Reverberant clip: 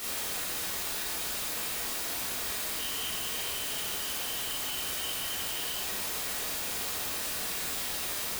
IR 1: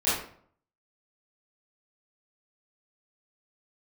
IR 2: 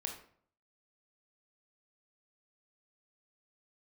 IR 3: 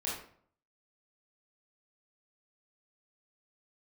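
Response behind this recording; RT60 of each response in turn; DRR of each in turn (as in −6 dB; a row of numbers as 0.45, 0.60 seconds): 3; 0.55, 0.55, 0.55 seconds; −13.5, 2.0, −6.5 decibels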